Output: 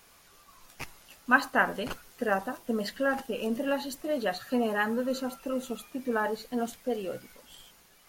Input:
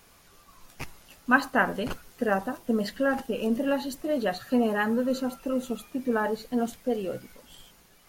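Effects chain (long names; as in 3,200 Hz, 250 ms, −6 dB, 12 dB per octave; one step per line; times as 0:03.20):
low-shelf EQ 420 Hz −6.5 dB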